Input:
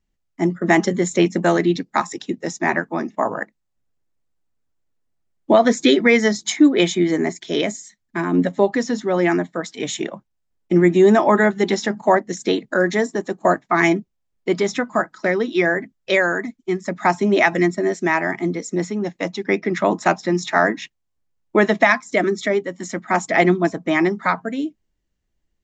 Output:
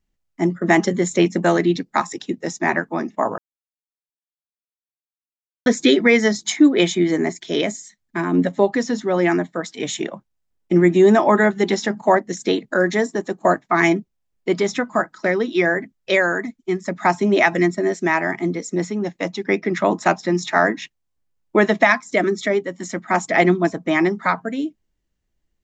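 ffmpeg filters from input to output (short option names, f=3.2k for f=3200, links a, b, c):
-filter_complex "[0:a]asplit=3[a][b][c];[a]atrim=end=3.38,asetpts=PTS-STARTPTS,afade=t=out:st=3.376:d=0.004:c=hsin[d];[b]atrim=start=3.38:end=5.66,asetpts=PTS-STARTPTS,volume=0[e];[c]atrim=start=5.66,asetpts=PTS-STARTPTS,afade=t=in:d=0.004:c=hsin[f];[d][e][f]concat=n=3:v=0:a=1"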